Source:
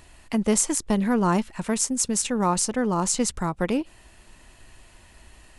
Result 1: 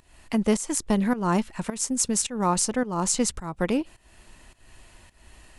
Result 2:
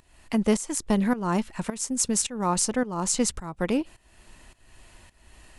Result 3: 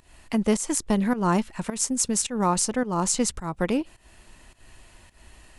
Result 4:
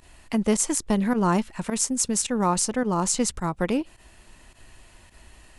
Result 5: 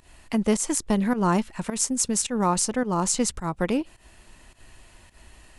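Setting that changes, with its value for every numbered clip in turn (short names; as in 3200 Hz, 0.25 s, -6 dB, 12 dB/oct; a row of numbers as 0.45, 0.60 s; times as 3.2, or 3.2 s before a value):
pump, release: 306, 460, 204, 62, 129 ms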